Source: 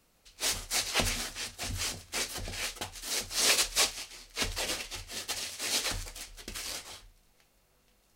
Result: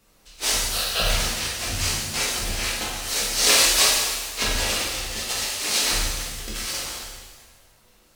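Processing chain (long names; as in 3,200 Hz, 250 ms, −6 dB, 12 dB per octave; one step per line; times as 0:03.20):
one scale factor per block 5 bits
0:00.60–0:01.10: phaser with its sweep stopped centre 1,400 Hz, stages 8
reverb with rising layers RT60 1.3 s, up +7 semitones, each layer −8 dB, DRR −5 dB
level +3.5 dB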